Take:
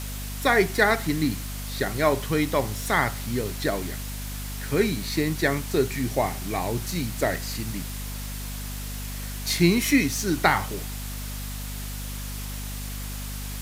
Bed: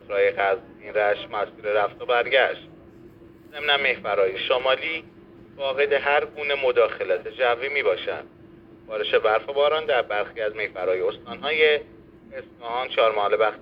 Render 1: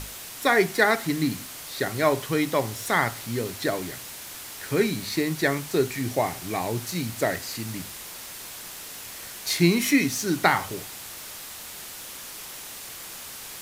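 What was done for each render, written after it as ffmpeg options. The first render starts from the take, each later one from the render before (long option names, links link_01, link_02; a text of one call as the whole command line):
ffmpeg -i in.wav -af "bandreject=frequency=50:width_type=h:width=6,bandreject=frequency=100:width_type=h:width=6,bandreject=frequency=150:width_type=h:width=6,bandreject=frequency=200:width_type=h:width=6,bandreject=frequency=250:width_type=h:width=6" out.wav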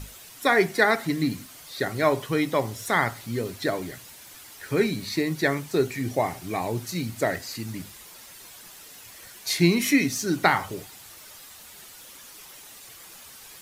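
ffmpeg -i in.wav -af "afftdn=noise_reduction=9:noise_floor=-40" out.wav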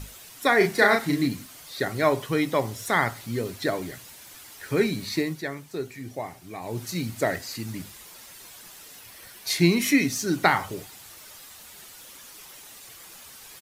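ffmpeg -i in.wav -filter_complex "[0:a]asplit=3[link_01][link_02][link_03];[link_01]afade=type=out:start_time=0.6:duration=0.02[link_04];[link_02]asplit=2[link_05][link_06];[link_06]adelay=35,volume=-3.5dB[link_07];[link_05][link_07]amix=inputs=2:normalize=0,afade=type=in:start_time=0.6:duration=0.02,afade=type=out:start_time=1.26:duration=0.02[link_08];[link_03]afade=type=in:start_time=1.26:duration=0.02[link_09];[link_04][link_08][link_09]amix=inputs=3:normalize=0,asettb=1/sr,asplit=3[link_10][link_11][link_12];[link_10]atrim=end=8.994[link_13];[link_11]atrim=start=8.99:end=9.5,asetpts=PTS-STARTPTS,afade=type=in:duration=0.004:curve=qsin,afade=type=out:start_time=0.506:duration=0.004:curve=qsin,equalizer=frequency=7000:width_type=o:width=0.34:gain=-5.5[link_14];[link_12]atrim=start=9.496[link_15];[link_13][link_14]acrossfade=duration=0.004:curve1=hsin:curve2=qsin[link_16];[link_16][link_15]acrossfade=duration=0.004:curve1=qsin:curve2=hsin,asplit=3[link_17][link_18][link_19];[link_17]atrim=end=5.43,asetpts=PTS-STARTPTS,afade=type=out:start_time=5.19:duration=0.24:silence=0.354813[link_20];[link_18]atrim=start=5.43:end=6.61,asetpts=PTS-STARTPTS,volume=-9dB[link_21];[link_19]atrim=start=6.61,asetpts=PTS-STARTPTS,afade=type=in:duration=0.24:silence=0.354813[link_22];[link_20][link_21][link_22]concat=n=3:v=0:a=1" out.wav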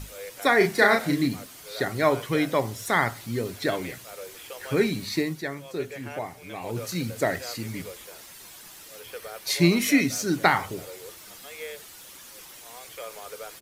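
ffmpeg -i in.wav -i bed.wav -filter_complex "[1:a]volume=-20dB[link_01];[0:a][link_01]amix=inputs=2:normalize=0" out.wav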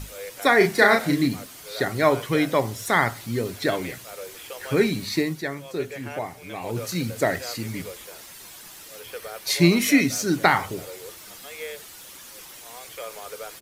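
ffmpeg -i in.wav -af "volume=2.5dB,alimiter=limit=-3dB:level=0:latency=1" out.wav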